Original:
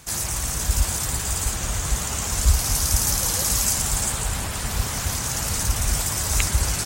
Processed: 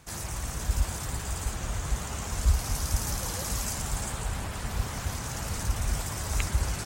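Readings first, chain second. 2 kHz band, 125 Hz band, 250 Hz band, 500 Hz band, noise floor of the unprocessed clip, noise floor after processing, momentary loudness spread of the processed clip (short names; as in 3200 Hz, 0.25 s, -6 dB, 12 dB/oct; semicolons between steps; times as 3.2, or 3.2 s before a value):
-7.5 dB, -5.0 dB, -5.0 dB, -5.5 dB, -28 dBFS, -37 dBFS, 5 LU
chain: high shelf 3200 Hz -9 dB; gain -5 dB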